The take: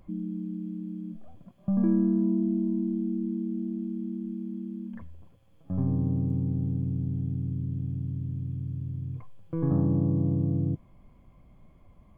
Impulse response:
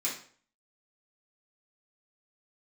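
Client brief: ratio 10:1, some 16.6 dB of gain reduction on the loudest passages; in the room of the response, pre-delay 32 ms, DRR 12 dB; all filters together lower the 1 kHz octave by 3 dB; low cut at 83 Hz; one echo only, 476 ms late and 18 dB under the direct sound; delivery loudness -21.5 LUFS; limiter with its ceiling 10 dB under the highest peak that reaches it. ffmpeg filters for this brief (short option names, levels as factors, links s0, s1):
-filter_complex "[0:a]highpass=83,equalizer=f=1000:t=o:g=-4,acompressor=threshold=0.0126:ratio=10,alimiter=level_in=4.73:limit=0.0631:level=0:latency=1,volume=0.211,aecho=1:1:476:0.126,asplit=2[s0][s1];[1:a]atrim=start_sample=2205,adelay=32[s2];[s1][s2]afir=irnorm=-1:irlink=0,volume=0.141[s3];[s0][s3]amix=inputs=2:normalize=0,volume=15.8"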